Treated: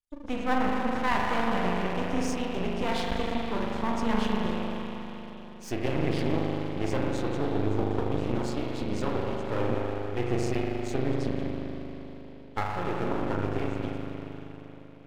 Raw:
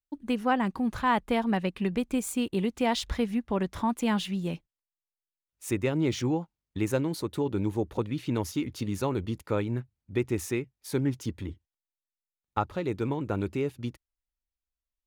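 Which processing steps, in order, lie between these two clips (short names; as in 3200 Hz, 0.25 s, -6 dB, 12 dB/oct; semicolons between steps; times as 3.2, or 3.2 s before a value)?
nonlinear frequency compression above 2900 Hz 1.5:1; spring tank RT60 4 s, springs 39 ms, chirp 20 ms, DRR -3 dB; half-wave rectifier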